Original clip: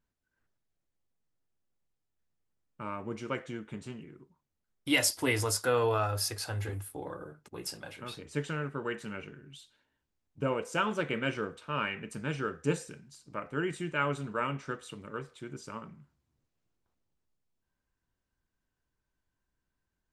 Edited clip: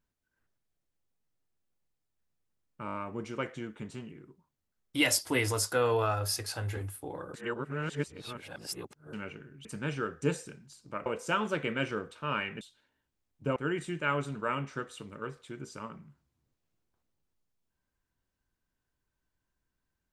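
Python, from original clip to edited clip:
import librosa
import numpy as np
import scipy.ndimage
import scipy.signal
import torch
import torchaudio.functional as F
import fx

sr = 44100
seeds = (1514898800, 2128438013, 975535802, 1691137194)

y = fx.edit(x, sr, fx.stutter(start_s=2.86, slice_s=0.02, count=5),
    fx.reverse_span(start_s=7.26, length_s=1.79),
    fx.swap(start_s=9.57, length_s=0.95, other_s=12.07, other_length_s=1.41), tone=tone)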